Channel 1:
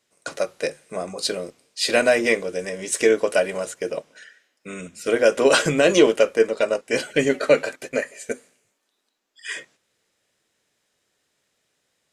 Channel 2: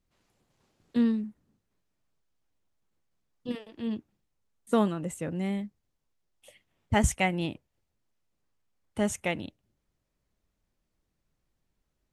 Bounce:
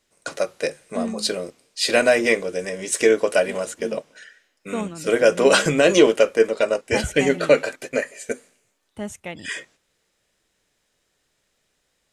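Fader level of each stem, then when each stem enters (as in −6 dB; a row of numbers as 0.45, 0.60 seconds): +1.0, −3.5 decibels; 0.00, 0.00 seconds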